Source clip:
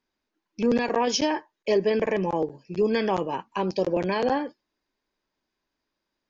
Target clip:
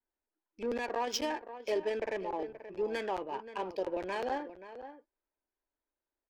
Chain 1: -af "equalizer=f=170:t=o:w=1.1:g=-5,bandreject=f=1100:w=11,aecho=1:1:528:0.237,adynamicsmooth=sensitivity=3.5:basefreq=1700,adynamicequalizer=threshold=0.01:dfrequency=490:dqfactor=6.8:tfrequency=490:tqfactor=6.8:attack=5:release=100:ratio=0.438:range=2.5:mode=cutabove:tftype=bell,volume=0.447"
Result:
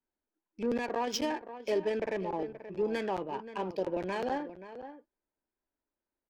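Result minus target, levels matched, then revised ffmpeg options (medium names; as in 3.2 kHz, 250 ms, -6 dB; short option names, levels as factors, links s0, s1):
125 Hz band +7.5 dB
-af "equalizer=f=170:t=o:w=1.1:g=-17,bandreject=f=1100:w=11,aecho=1:1:528:0.237,adynamicsmooth=sensitivity=3.5:basefreq=1700,adynamicequalizer=threshold=0.01:dfrequency=490:dqfactor=6.8:tfrequency=490:tqfactor=6.8:attack=5:release=100:ratio=0.438:range=2.5:mode=cutabove:tftype=bell,volume=0.447"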